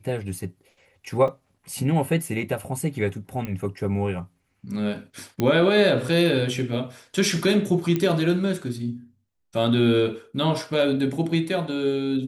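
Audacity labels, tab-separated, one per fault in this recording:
1.280000	1.280000	drop-out 3.9 ms
3.450000	3.450000	click −18 dBFS
5.400000	5.400000	click −11 dBFS
7.960000	7.960000	click −12 dBFS

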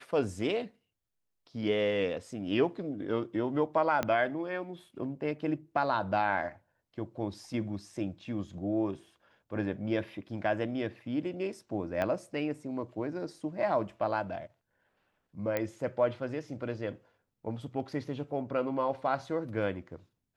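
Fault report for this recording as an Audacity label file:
4.030000	4.030000	click −15 dBFS
12.020000	12.020000	click −20 dBFS
15.570000	15.570000	click −17 dBFS

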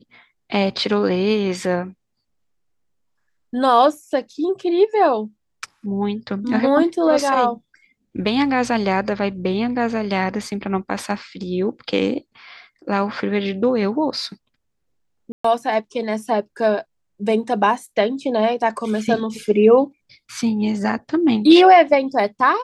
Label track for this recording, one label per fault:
15.320000	15.440000	drop-out 124 ms

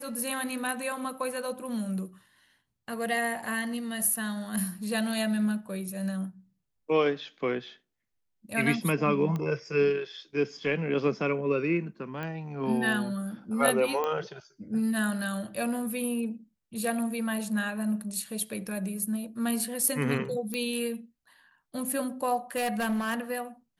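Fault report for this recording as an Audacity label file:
9.360000	9.360000	click −21 dBFS
12.230000	12.230000	click −23 dBFS
14.040000	14.040000	click −18 dBFS
20.540000	20.540000	click −18 dBFS
22.560000	23.200000	clipping −25 dBFS

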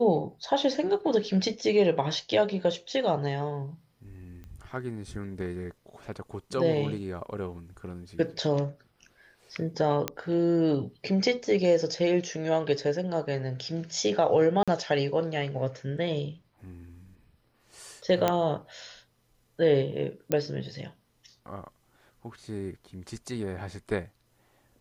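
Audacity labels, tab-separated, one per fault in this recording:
4.440000	4.440000	click −33 dBFS
10.080000	10.080000	click −11 dBFS
14.630000	14.680000	drop-out 46 ms
18.280000	18.280000	click −10 dBFS
20.320000	20.320000	click −12 dBFS

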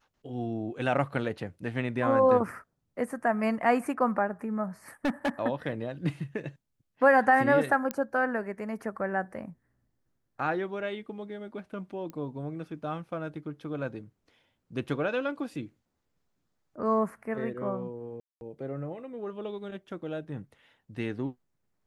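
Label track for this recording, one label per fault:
5.050000	5.290000	clipping −23.5 dBFS
7.910000	7.910000	click −16 dBFS
12.100000	12.100000	click −28 dBFS
18.200000	18.410000	drop-out 211 ms

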